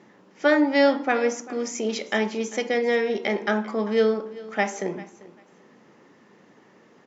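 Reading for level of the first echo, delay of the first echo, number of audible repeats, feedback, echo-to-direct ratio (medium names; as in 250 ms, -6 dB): -19.0 dB, 394 ms, 2, 19%, -19.0 dB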